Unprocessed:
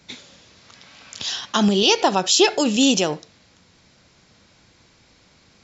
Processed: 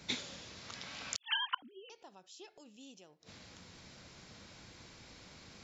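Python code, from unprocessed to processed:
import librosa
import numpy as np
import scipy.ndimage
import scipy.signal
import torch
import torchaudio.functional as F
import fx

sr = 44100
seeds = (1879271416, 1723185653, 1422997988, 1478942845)

y = fx.sine_speech(x, sr, at=(1.17, 1.9))
y = fx.gate_flip(y, sr, shuts_db=-19.0, range_db=-38)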